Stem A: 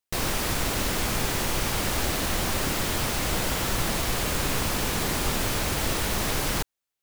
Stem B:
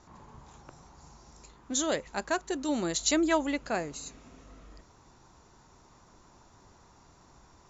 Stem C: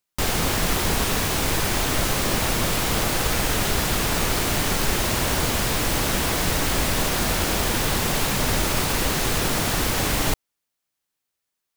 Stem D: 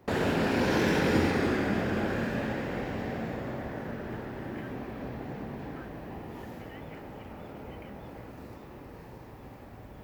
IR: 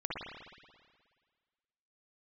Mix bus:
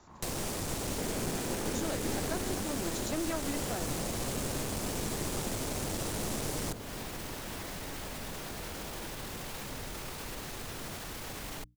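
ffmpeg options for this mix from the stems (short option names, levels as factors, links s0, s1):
-filter_complex "[0:a]equalizer=f=8100:w=0.72:g=8.5,adelay=100,volume=0.668[s0];[1:a]volume=1[s1];[2:a]alimiter=limit=0.15:level=0:latency=1:release=22,adelay=1300,volume=0.178[s2];[3:a]adelay=900,volume=0.562[s3];[s0][s1][s2][s3]amix=inputs=4:normalize=0,bandreject=f=60:t=h:w=6,bandreject=f=120:t=h:w=6,bandreject=f=180:t=h:w=6,bandreject=f=240:t=h:w=6,bandreject=f=300:t=h:w=6,acrossover=split=82|740[s4][s5][s6];[s4]acompressor=threshold=0.01:ratio=4[s7];[s5]acompressor=threshold=0.0282:ratio=4[s8];[s6]acompressor=threshold=0.0126:ratio=4[s9];[s7][s8][s9]amix=inputs=3:normalize=0,aeval=exprs='clip(val(0),-1,0.0211)':c=same"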